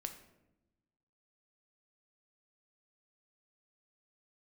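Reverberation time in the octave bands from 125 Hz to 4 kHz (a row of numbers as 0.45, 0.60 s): 1.5, 1.4, 1.1, 0.80, 0.70, 0.55 s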